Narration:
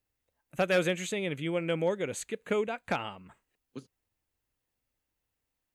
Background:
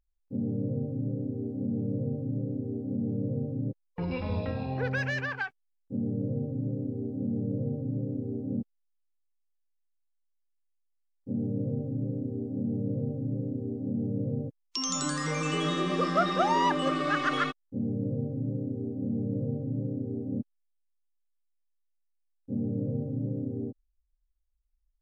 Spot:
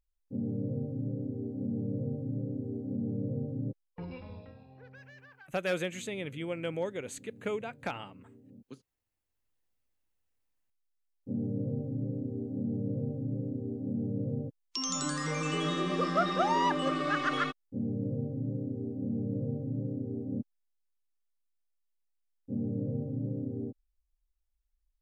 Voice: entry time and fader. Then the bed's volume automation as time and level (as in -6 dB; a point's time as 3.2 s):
4.95 s, -5.0 dB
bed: 3.77 s -3 dB
4.68 s -22.5 dB
8.94 s -22.5 dB
9.49 s -2.5 dB